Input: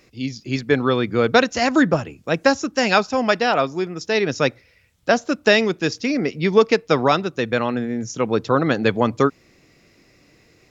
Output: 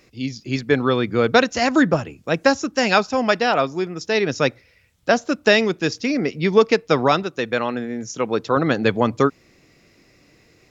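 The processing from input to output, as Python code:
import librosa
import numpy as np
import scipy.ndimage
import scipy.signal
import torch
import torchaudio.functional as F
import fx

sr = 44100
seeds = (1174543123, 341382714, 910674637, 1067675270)

y = fx.low_shelf(x, sr, hz=170.0, db=-9.5, at=(7.23, 8.57))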